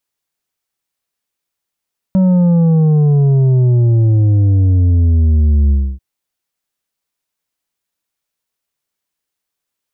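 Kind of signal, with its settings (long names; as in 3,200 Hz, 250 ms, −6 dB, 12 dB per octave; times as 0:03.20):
bass drop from 190 Hz, over 3.84 s, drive 6.5 dB, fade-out 0.28 s, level −8.5 dB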